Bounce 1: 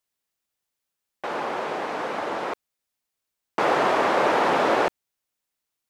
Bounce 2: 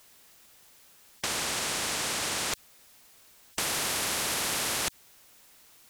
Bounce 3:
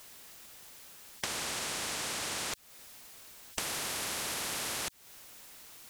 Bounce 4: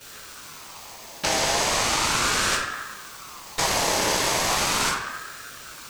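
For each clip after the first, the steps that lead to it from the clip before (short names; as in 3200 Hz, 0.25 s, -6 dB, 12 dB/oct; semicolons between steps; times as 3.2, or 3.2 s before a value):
in parallel at +1 dB: limiter -20 dBFS, peak gain reduction 10 dB; on the sum: spectral compressor 10:1; gain -5 dB
compressor 6:1, threshold -39 dBFS, peak gain reduction 13 dB; gain +5 dB
reverb RT60 1.2 s, pre-delay 3 ms, DRR -11 dB; ring modulator with a swept carrier 1100 Hz, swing 35%, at 0.37 Hz; gain +1.5 dB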